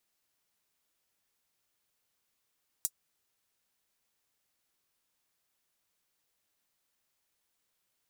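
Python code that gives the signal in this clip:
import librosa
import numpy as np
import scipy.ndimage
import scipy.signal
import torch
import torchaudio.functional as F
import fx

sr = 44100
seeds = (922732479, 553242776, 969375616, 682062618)

y = fx.drum_hat(sr, length_s=0.24, from_hz=7100.0, decay_s=0.06)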